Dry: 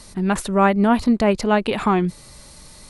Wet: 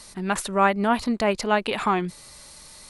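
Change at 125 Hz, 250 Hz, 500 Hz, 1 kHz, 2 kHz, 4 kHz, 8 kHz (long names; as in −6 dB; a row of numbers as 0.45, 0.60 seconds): −8.5, −8.0, −4.5, −2.0, −0.5, 0.0, 0.0 decibels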